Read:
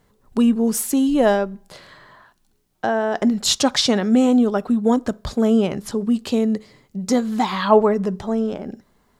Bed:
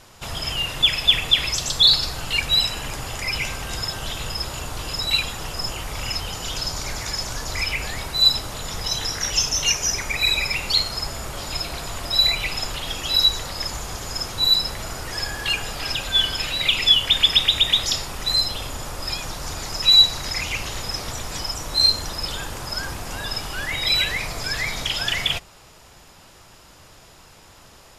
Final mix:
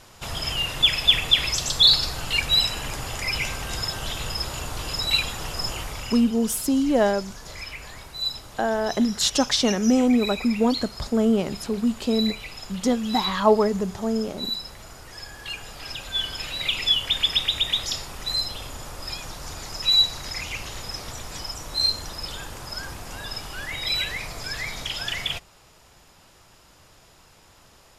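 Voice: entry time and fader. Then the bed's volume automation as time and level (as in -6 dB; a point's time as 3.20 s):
5.75 s, -3.5 dB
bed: 5.81 s -1 dB
6.36 s -12 dB
15.26 s -12 dB
16.64 s -5.5 dB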